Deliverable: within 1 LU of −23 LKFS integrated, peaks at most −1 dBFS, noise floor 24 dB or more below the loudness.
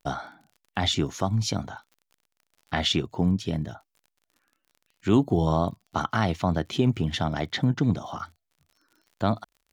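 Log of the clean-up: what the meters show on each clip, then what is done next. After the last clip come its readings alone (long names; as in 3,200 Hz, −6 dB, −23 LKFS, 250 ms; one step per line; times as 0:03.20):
crackle rate 45 per second; integrated loudness −26.5 LKFS; sample peak −8.5 dBFS; target loudness −23.0 LKFS
→ click removal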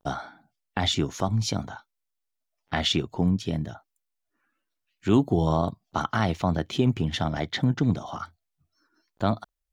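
crackle rate 0.10 per second; integrated loudness −26.5 LKFS; sample peak −8.5 dBFS; target loudness −23.0 LKFS
→ level +3.5 dB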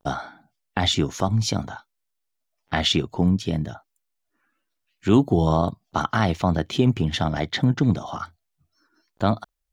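integrated loudness −23.0 LKFS; sample peak −5.0 dBFS; background noise floor −78 dBFS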